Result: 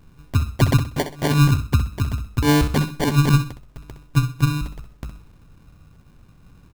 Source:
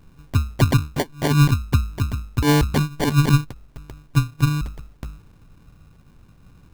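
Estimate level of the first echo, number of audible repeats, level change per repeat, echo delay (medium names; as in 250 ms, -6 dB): -10.5 dB, 3, -11.0 dB, 64 ms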